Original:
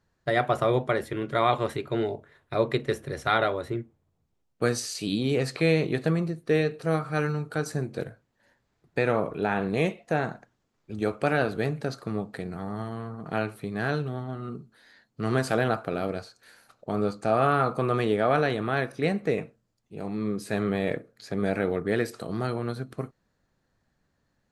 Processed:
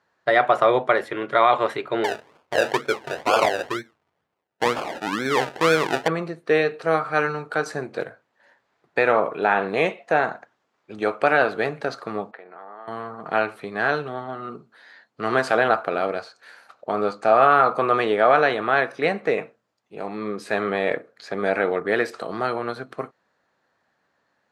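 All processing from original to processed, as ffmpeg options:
-filter_complex "[0:a]asettb=1/sr,asplit=3[s0][s1][s2];[s0]atrim=end=2.044[s3];[s1]atrim=start=2.04:end=6.08,asetpts=PTS-STARTPTS,afade=t=in:d=0.004:c=qsin,afade=t=out:st=4.036:d=0.004:c=qsin,asuperstop=centerf=3100:order=8:qfactor=1.1,acrusher=samples=32:mix=1:aa=0.000001:lfo=1:lforange=19.2:lforate=2.1[s4];[s2]atrim=start=6.076[s5];[s3][s4]acrossfade=d=0.004:c1=hsin:c2=qsin[s6];[s6][s5]acrossfade=d=0.004:c1=qsin:c2=hsin,asettb=1/sr,asplit=3[s7][s8][s9];[s7]atrim=end=12.314[s10];[s8]atrim=start=12.31:end=12.88,asetpts=PTS-STARTPTS,afade=t=in:d=0.004:c=qsin,afade=t=out:st=0.566:d=0.004:c=qsin,highpass=420,lowpass=2100,acompressor=threshold=0.00398:ratio=2.5:attack=3.2:release=140:knee=1:detection=peak[s11];[s9]atrim=start=12.876[s12];[s10][s11]acrossfade=d=0.004:c1=hsin:c2=qsin[s13];[s13][s12]acrossfade=d=0.004:c1=qsin:c2=hsin,highpass=760,aemphasis=mode=reproduction:type=riaa,alimiter=level_in=5.96:limit=0.891:release=50:level=0:latency=1,volume=0.596"

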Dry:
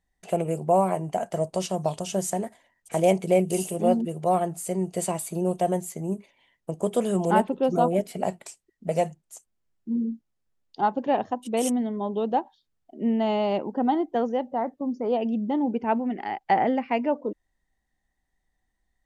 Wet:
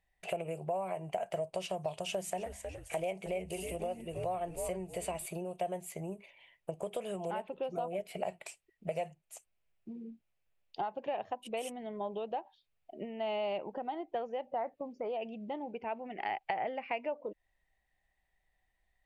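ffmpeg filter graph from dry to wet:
-filter_complex "[0:a]asettb=1/sr,asplit=3[s0][s1][s2];[s0]atrim=end=2.064[s3];[s1]atrim=start=2.06:end=5.26,asetpts=PTS-STARTPTS,afade=t=in:d=0.004:c=qsin,afade=t=out:st=3.196:d=0.004:c=qsin,bandreject=f=50:t=h:w=6,bandreject=f=100:t=h:w=6,bandreject=f=150:t=h:w=6,bandreject=f=200:t=h:w=6,bandreject=f=250:t=h:w=6,asplit=5[s4][s5][s6][s7][s8];[s5]adelay=314,afreqshift=-120,volume=0.224[s9];[s6]adelay=628,afreqshift=-240,volume=0.0832[s10];[s7]adelay=942,afreqshift=-360,volume=0.0305[s11];[s8]adelay=1256,afreqshift=-480,volume=0.0114[s12];[s4][s9][s10][s11][s12]amix=inputs=5:normalize=0,atrim=end_sample=141120[s13];[s2]atrim=start=5.256[s14];[s3][s13]acrossfade=d=0.004:c1=hsin:c2=qsin[s15];[s15][s14]acrossfade=d=0.004:c1=qsin:c2=hsin,alimiter=limit=0.119:level=0:latency=1:release=443,acompressor=threshold=0.0251:ratio=6,equalizer=f=250:t=o:w=0.67:g=-10,equalizer=f=630:t=o:w=0.67:g=6,equalizer=f=2500:t=o:w=0.67:g=11,equalizer=f=6300:t=o:w=0.67:g=-5,volume=0.708"

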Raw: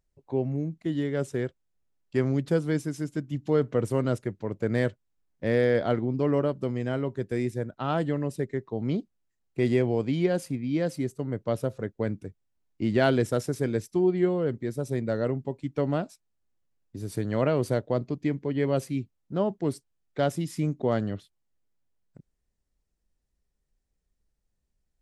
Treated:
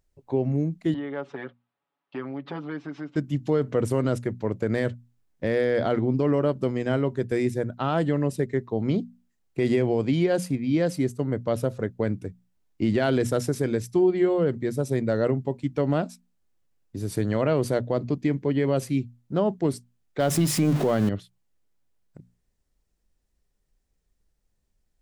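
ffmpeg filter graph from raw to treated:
-filter_complex "[0:a]asettb=1/sr,asplit=3[s0][s1][s2];[s0]atrim=end=0.944[s3];[s1]atrim=start=0.94:end=3.16,asetpts=PTS-STARTPTS,afade=t=in:d=0.004:c=qsin,afade=t=out:st=2.216:d=0.004:c=qsin,aecho=1:1:7.1:0.87,atrim=end_sample=97902,acompressor=threshold=0.0224:ratio=3:attack=3.2:release=140:knee=1:detection=peak,highpass=280,equalizer=f=420:t=q:w=4:g=-4,equalizer=f=850:t=q:w=4:g=7,equalizer=f=1200:t=q:w=4:g=8,lowpass=f=3500:w=0.5412,lowpass=f=3500:w=1.3066[s4];[s2]atrim=start=3.156[s5];[s3][s4]acrossfade=d=0.004:c1=hsin:c2=qsin[s6];[s6][s5]acrossfade=d=0.004:c1=qsin:c2=hsin,asettb=1/sr,asplit=3[s7][s8][s9];[s7]atrim=end=20.204[s10];[s8]atrim=start=20.2:end=21.09,asetpts=PTS-STARTPTS,afade=t=in:d=0.004:c=qsin,afade=t=out:st=0.886:d=0.004:c=qsin,aeval=exprs='val(0)+0.5*0.015*sgn(val(0))':c=same,bandreject=f=50:t=h:w=6,bandreject=f=100:t=h:w=6,bandreject=f=150:t=h:w=6,acontrast=29[s11];[s9]atrim=start=21.086[s12];[s10][s11]acrossfade=d=0.004:c1=hsin:c2=qsin[s13];[s13][s12]acrossfade=d=0.004:c1=qsin:c2=hsin,bandreject=f=60:t=h:w=6,bandreject=f=120:t=h:w=6,bandreject=f=180:t=h:w=6,bandreject=f=240:t=h:w=6,alimiter=limit=0.119:level=0:latency=1:release=70,volume=1.78"

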